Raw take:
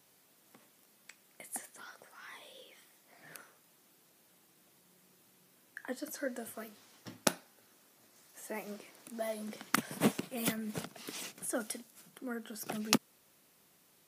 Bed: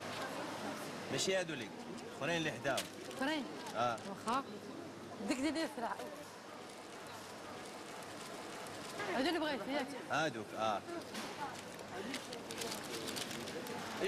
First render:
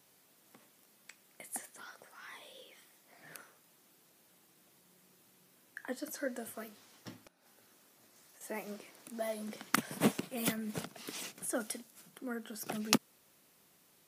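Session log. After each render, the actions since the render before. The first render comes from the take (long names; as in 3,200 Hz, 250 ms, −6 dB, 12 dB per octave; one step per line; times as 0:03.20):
0:07.18–0:08.41: downward compressor 12 to 1, threshold −57 dBFS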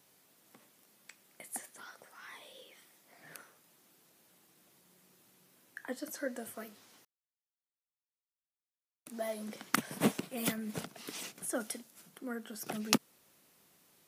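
0:07.05–0:09.06: silence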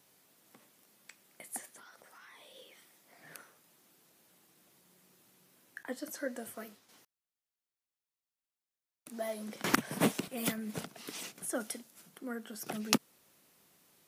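0:01.77–0:02.56: downward compressor, threshold −52 dBFS
0:05.83–0:06.89: downward expander −56 dBFS
0:09.64–0:10.28: multiband upward and downward compressor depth 100%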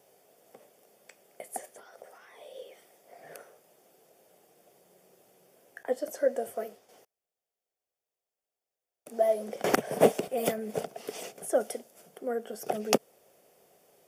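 flat-topped bell 550 Hz +13.5 dB 1.2 octaves
notch filter 4,000 Hz, Q 6.5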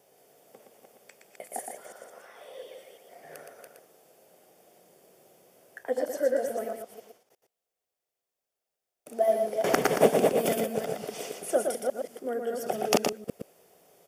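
delay that plays each chunk backwards 175 ms, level −3 dB
on a send: single-tap delay 118 ms −5 dB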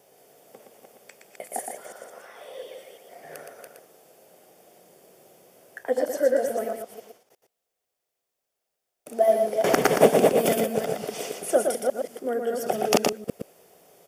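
level +4.5 dB
brickwall limiter −3 dBFS, peak gain reduction 3 dB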